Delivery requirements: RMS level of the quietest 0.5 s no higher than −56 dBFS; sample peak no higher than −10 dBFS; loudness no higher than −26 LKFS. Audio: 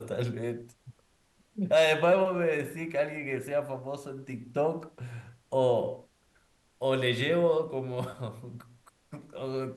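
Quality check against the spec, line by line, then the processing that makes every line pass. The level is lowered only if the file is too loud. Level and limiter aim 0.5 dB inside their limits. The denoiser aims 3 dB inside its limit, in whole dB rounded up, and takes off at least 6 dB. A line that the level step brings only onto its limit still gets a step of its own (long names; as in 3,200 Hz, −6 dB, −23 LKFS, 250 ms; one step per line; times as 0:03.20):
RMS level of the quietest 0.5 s −67 dBFS: in spec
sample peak −13.5 dBFS: in spec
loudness −29.5 LKFS: in spec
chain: no processing needed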